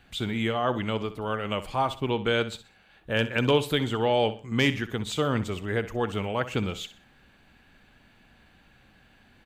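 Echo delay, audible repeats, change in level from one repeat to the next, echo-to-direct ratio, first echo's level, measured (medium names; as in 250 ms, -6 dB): 63 ms, 3, -9.5 dB, -13.5 dB, -14.0 dB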